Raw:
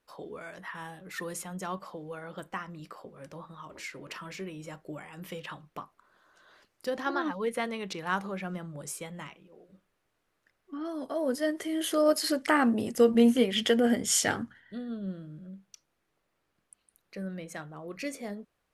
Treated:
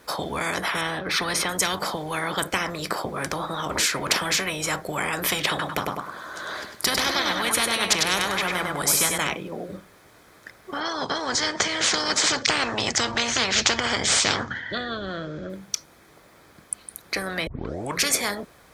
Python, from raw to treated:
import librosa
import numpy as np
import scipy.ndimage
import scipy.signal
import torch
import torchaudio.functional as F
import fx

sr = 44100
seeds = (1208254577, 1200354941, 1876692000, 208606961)

y = fx.savgol(x, sr, points=15, at=(0.81, 1.49))
y = fx.echo_feedback(y, sr, ms=100, feedback_pct=29, wet_db=-7, at=(5.49, 9.18))
y = fx.steep_lowpass(y, sr, hz=6900.0, slope=48, at=(10.8, 15.5))
y = fx.edit(y, sr, fx.tape_start(start_s=17.47, length_s=0.53), tone=tone)
y = scipy.signal.sosfilt(scipy.signal.butter(2, 50.0, 'highpass', fs=sr, output='sos'), y)
y = fx.notch(y, sr, hz=2800.0, q=6.5)
y = fx.spectral_comp(y, sr, ratio=10.0)
y = y * 10.0 ** (6.5 / 20.0)